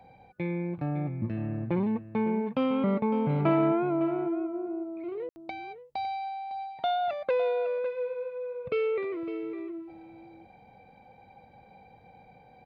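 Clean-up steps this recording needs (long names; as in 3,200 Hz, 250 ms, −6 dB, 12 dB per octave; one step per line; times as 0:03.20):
ambience match 0:05.29–0:05.36
echo removal 556 ms −12.5 dB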